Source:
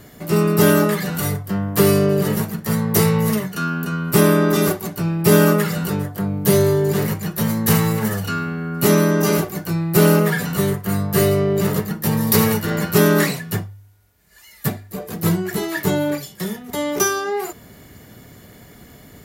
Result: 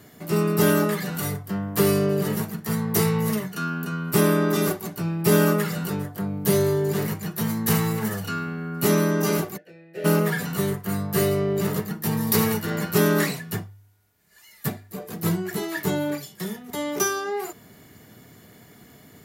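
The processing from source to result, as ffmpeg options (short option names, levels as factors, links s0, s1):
-filter_complex "[0:a]asplit=3[s0][s1][s2];[s0]afade=t=out:st=9.56:d=0.02[s3];[s1]asplit=3[s4][s5][s6];[s4]bandpass=f=530:t=q:w=8,volume=1[s7];[s5]bandpass=f=1840:t=q:w=8,volume=0.501[s8];[s6]bandpass=f=2480:t=q:w=8,volume=0.355[s9];[s7][s8][s9]amix=inputs=3:normalize=0,afade=t=in:st=9.56:d=0.02,afade=t=out:st=10.04:d=0.02[s10];[s2]afade=t=in:st=10.04:d=0.02[s11];[s3][s10][s11]amix=inputs=3:normalize=0,highpass=100,bandreject=f=550:w=12,volume=0.562"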